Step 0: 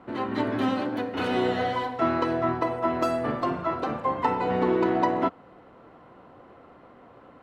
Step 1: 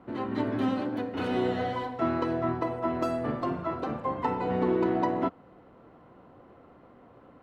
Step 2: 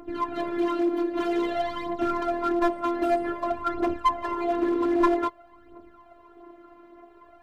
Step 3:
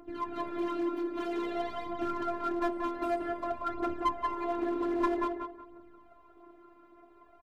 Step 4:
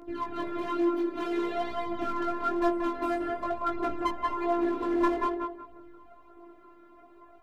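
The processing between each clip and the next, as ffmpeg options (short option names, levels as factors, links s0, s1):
-af "lowshelf=f=490:g=6.5,volume=0.473"
-af "aphaser=in_gain=1:out_gain=1:delay=4:decay=0.74:speed=0.52:type=triangular,afftfilt=real='hypot(re,im)*cos(PI*b)':imag='0':win_size=512:overlap=0.75,aeval=exprs='clip(val(0),-1,0.0841)':c=same,volume=1.58"
-filter_complex "[0:a]asplit=2[s0][s1];[s1]adelay=182,lowpass=f=2100:p=1,volume=0.631,asplit=2[s2][s3];[s3]adelay=182,lowpass=f=2100:p=1,volume=0.31,asplit=2[s4][s5];[s5]adelay=182,lowpass=f=2100:p=1,volume=0.31,asplit=2[s6][s7];[s7]adelay=182,lowpass=f=2100:p=1,volume=0.31[s8];[s0][s2][s4][s6][s8]amix=inputs=5:normalize=0,volume=0.422"
-af "flanger=delay=17.5:depth=2.3:speed=1.1,volume=2.11"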